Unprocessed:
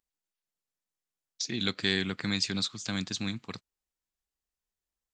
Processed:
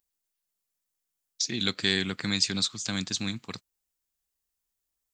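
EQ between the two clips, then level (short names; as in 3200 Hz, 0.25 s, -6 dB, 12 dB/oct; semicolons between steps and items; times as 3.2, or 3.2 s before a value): high shelf 6700 Hz +11 dB; +1.0 dB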